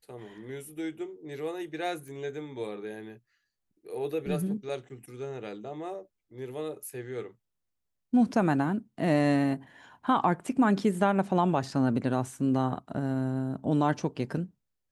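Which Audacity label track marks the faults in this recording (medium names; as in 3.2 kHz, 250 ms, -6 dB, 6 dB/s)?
2.080000	2.080000	pop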